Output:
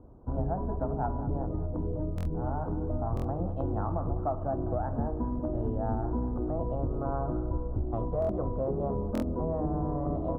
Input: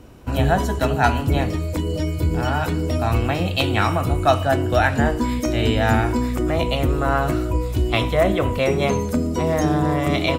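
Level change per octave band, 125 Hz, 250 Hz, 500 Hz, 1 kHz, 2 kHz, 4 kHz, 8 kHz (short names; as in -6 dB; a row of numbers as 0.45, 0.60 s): -11.0 dB, -11.0 dB, -11.5 dB, -13.5 dB, -30.5 dB, under -35 dB, under -25 dB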